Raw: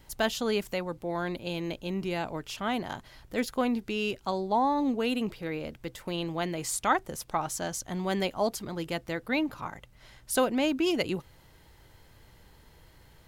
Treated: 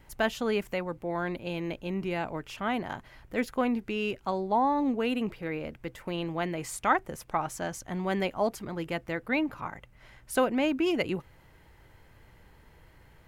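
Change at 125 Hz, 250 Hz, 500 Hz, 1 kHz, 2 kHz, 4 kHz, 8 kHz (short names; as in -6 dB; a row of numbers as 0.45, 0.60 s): 0.0, 0.0, 0.0, +0.5, +1.0, -4.0, -6.5 dB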